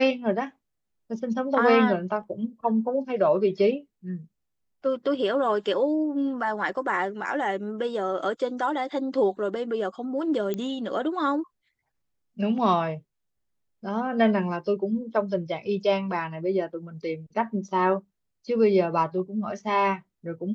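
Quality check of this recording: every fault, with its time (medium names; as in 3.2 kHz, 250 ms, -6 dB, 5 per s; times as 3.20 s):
10.54 s: pop -17 dBFS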